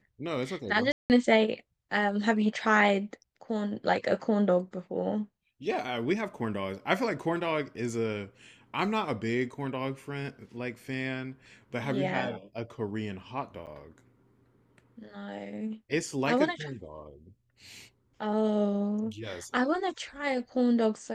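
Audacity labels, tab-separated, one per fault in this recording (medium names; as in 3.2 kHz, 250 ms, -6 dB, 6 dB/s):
0.920000	1.100000	dropout 179 ms
13.660000	13.670000	dropout 8.4 ms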